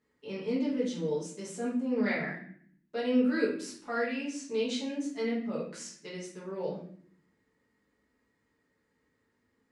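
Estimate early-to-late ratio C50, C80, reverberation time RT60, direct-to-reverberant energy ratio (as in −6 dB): 4.5 dB, 9.0 dB, 0.60 s, −8.0 dB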